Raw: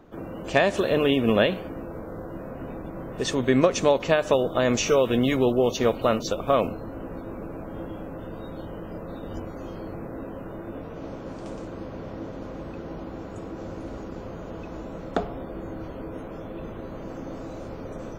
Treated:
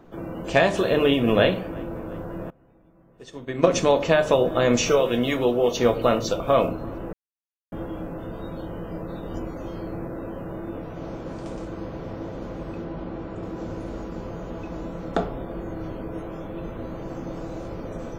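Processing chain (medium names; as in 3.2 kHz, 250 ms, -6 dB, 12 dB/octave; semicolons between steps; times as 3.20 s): 4.95–5.75 s: bass shelf 320 Hz -7 dB; 12.84–13.43 s: low-pass 4 kHz 12 dB/octave; feedback echo behind a low-pass 349 ms, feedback 63%, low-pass 2.5 kHz, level -24 dB; simulated room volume 180 m³, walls furnished, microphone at 0.73 m; 2.50–3.67 s: upward expansion 2.5:1, over -29 dBFS; 7.13–7.72 s: mute; trim +1 dB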